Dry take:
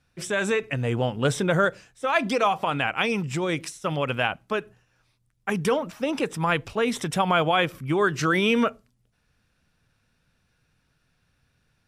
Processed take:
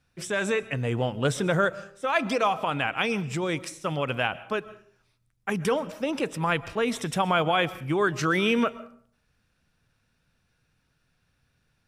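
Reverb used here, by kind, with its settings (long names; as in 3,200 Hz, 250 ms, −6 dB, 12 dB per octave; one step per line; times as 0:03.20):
comb and all-pass reverb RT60 0.53 s, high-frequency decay 0.6×, pre-delay 90 ms, DRR 17.5 dB
level −2 dB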